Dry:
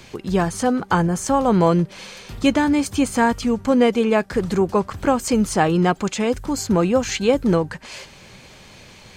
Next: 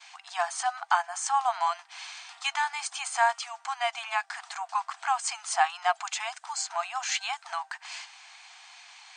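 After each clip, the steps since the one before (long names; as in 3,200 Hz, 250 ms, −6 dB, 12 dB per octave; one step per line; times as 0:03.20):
brick-wall band-pass 670–9,300 Hz
downward expander −49 dBFS
level −3.5 dB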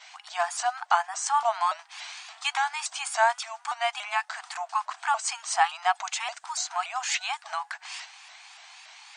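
pitch modulation by a square or saw wave saw up 3.5 Hz, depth 160 cents
level +1.5 dB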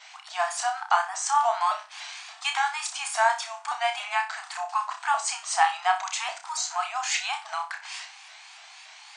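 flutter between parallel walls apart 5.3 metres, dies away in 0.3 s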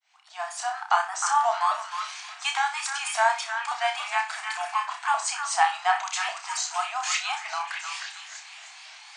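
fade in at the beginning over 0.90 s
echo through a band-pass that steps 309 ms, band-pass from 1,500 Hz, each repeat 0.7 octaves, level −4.5 dB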